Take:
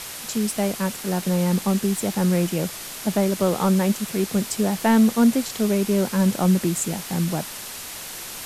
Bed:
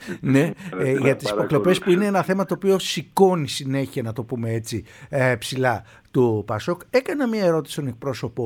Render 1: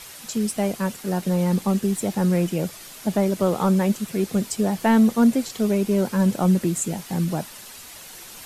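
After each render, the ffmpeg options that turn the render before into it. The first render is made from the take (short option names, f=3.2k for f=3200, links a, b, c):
-af "afftdn=nr=8:nf=-35"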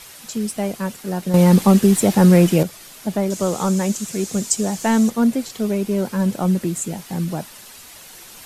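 -filter_complex "[0:a]asettb=1/sr,asplit=3[a][b][c];[a]atrim=end=3.304[d];[b]atrim=start=3.3:end=5.1,asetpts=PTS-STARTPTS,afade=t=in:d=0.004:c=qsin,afade=t=out:st=1.796:d=0.004:c=qsin,equalizer=f=6.9k:t=o:w=0.89:g=13.5[e];[c]atrim=start=5.096[f];[d][e]acrossfade=d=0.004:c1=hsin:c2=qsin[g];[g][f]acrossfade=d=0.004:c1=qsin:c2=hsin,asplit=3[h][i][j];[h]atrim=end=1.342[k];[i]atrim=start=1.338:end=2.632,asetpts=PTS-STARTPTS,volume=9dB[l];[j]atrim=start=2.628[m];[k][l]acrossfade=d=0.004:c1=hsin:c2=hsin[n];[n][m]acrossfade=d=0.004:c1=hsin:c2=hsin"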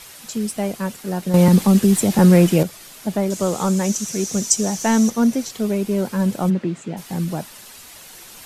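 -filter_complex "[0:a]asettb=1/sr,asplit=3[a][b][c];[a]atrim=end=1.484[d];[b]atrim=start=1.48:end=2.19,asetpts=PTS-STARTPTS,afade=t=in:d=0.004:c=qsin,afade=t=out:st=0.706:d=0.004:c=qsin,acrossover=split=280|3000[e][f][g];[f]acompressor=threshold=-20dB:ratio=6:attack=3.2:release=140:knee=2.83:detection=peak[h];[e][h][g]amix=inputs=3:normalize=0[i];[c]atrim=start=2.186[j];[d][i]acrossfade=d=0.004:c1=hsin:c2=qsin[k];[k][j]acrossfade=d=0.004:c1=qsin:c2=hsin,asettb=1/sr,asplit=3[l][m][n];[l]atrim=end=3.844[o];[m]atrim=start=3.84:end=5.5,asetpts=PTS-STARTPTS,afade=t=in:d=0.004:c=qsin,afade=t=out:st=1.656:d=0.004:c=qsin,equalizer=f=5.9k:t=o:w=0.21:g=11.5[p];[n]atrim=start=5.496[q];[o][p]acrossfade=d=0.004:c1=hsin:c2=qsin[r];[r][q]acrossfade=d=0.004:c1=qsin:c2=hsin,asplit=3[s][t][u];[s]afade=t=out:st=6.49:d=0.02[v];[t]highpass=130,lowpass=3k,afade=t=in:st=6.49:d=0.02,afade=t=out:st=6.96:d=0.02[w];[u]afade=t=in:st=6.96:d=0.02[x];[v][w][x]amix=inputs=3:normalize=0"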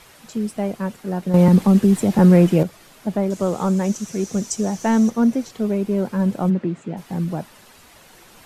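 -af "highshelf=f=2.9k:g=-12"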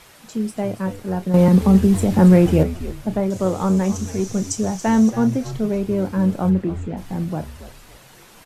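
-filter_complex "[0:a]asplit=2[a][b];[b]adelay=32,volume=-12dB[c];[a][c]amix=inputs=2:normalize=0,asplit=4[d][e][f][g];[e]adelay=279,afreqshift=-100,volume=-13dB[h];[f]adelay=558,afreqshift=-200,volume=-22.4dB[i];[g]adelay=837,afreqshift=-300,volume=-31.7dB[j];[d][h][i][j]amix=inputs=4:normalize=0"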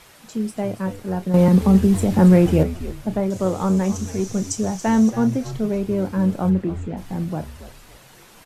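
-af "volume=-1dB"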